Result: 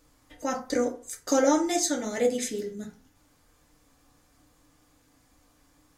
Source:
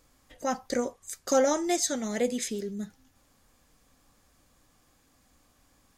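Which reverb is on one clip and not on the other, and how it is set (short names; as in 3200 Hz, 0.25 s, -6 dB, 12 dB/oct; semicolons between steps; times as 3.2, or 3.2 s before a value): FDN reverb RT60 0.4 s, low-frequency decay 0.95×, high-frequency decay 0.55×, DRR 0.5 dB; gain -1 dB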